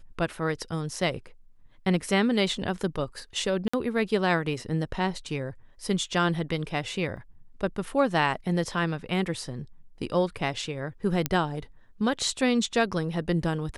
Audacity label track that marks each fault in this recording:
3.680000	3.730000	gap 55 ms
7.170000	7.170000	gap 2.1 ms
11.260000	11.260000	pop -8 dBFS

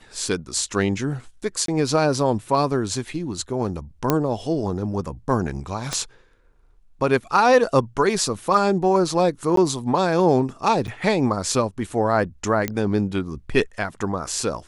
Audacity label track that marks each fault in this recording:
1.660000	1.680000	gap 23 ms
4.100000	4.100000	pop -4 dBFS
5.930000	5.930000	pop -11 dBFS
9.560000	9.570000	gap 13 ms
10.870000	10.880000	gap 8.9 ms
12.680000	12.680000	pop -9 dBFS

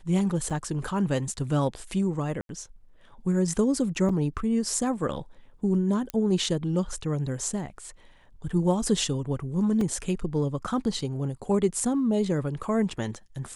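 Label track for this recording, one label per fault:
0.500000	0.510000	gap 6 ms
2.410000	2.490000	gap 82 ms
4.090000	4.090000	gap 4.1 ms
6.100000	6.100000	pop -15 dBFS
9.810000	9.810000	gap 2.7 ms

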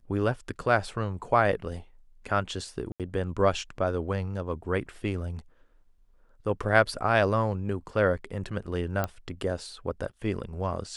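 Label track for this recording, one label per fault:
2.920000	3.000000	gap 77 ms
9.040000	9.040000	pop -14 dBFS

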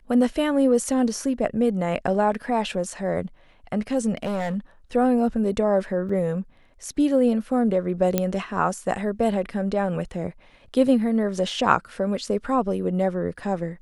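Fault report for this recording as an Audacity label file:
4.170000	4.570000	clipped -22 dBFS
6.090000	6.090000	gap 4.3 ms
8.180000	8.180000	pop -7 dBFS

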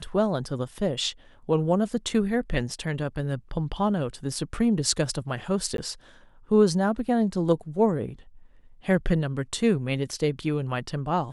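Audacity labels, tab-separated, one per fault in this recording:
5.770000	5.780000	gap 12 ms

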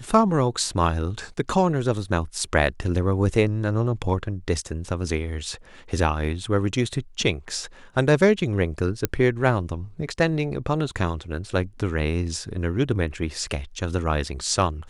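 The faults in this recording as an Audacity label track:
9.050000	9.050000	pop -6 dBFS

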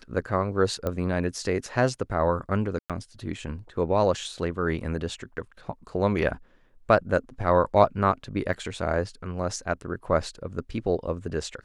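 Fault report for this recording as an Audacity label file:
0.870000	0.870000	pop -16 dBFS
2.790000	2.900000	gap 0.107 s
8.530000	8.530000	gap 4.1 ms

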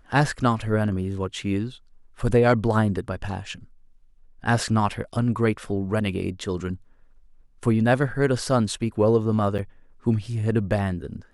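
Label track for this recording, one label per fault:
9.580000	9.590000	gap 7.4 ms

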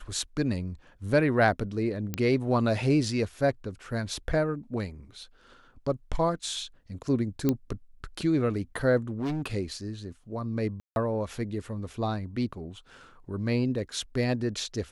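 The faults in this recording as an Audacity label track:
2.140000	2.140000	pop -15 dBFS
7.490000	7.490000	pop -12 dBFS
9.090000	9.480000	clipped -27 dBFS
10.800000	10.960000	gap 0.161 s

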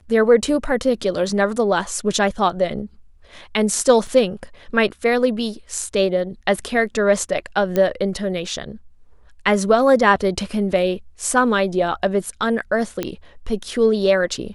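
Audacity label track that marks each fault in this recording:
4.070000	4.070000	gap 3.2 ms
7.760000	7.760000	pop -8 dBFS
13.030000	13.030000	pop -9 dBFS

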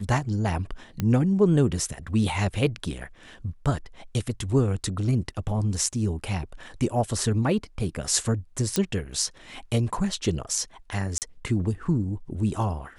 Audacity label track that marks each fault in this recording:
1.000000	1.000000	pop -14 dBFS
8.760000	8.760000	pop -8 dBFS
11.180000	11.220000	gap 38 ms

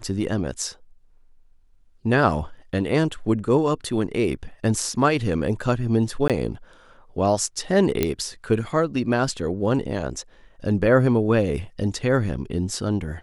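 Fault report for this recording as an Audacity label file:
6.280000	6.300000	gap 17 ms
8.030000	8.030000	pop -6 dBFS

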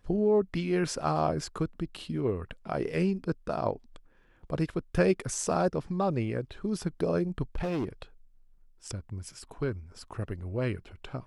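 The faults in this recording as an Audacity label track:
7.550000	7.890000	clipped -27.5 dBFS

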